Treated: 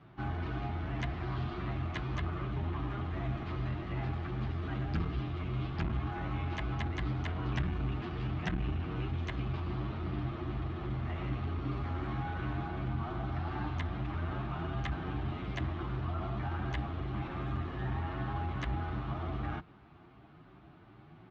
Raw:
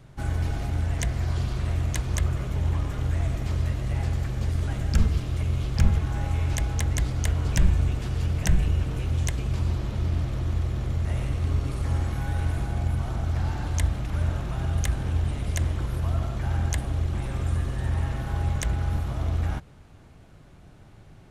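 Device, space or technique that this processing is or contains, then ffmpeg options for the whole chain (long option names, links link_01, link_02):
barber-pole flanger into a guitar amplifier: -filter_complex "[0:a]asplit=2[link_01][link_02];[link_02]adelay=9.1,afreqshift=2.6[link_03];[link_01][link_03]amix=inputs=2:normalize=1,asoftclip=type=tanh:threshold=-19.5dB,highpass=76,equalizer=frequency=91:width_type=q:width=4:gain=-8,equalizer=frequency=330:width_type=q:width=4:gain=7,equalizer=frequency=520:width_type=q:width=4:gain=-8,equalizer=frequency=760:width_type=q:width=4:gain=4,equalizer=frequency=1200:width_type=q:width=4:gain=7,lowpass=frequency=3600:width=0.5412,lowpass=frequency=3600:width=1.3066,volume=-1dB"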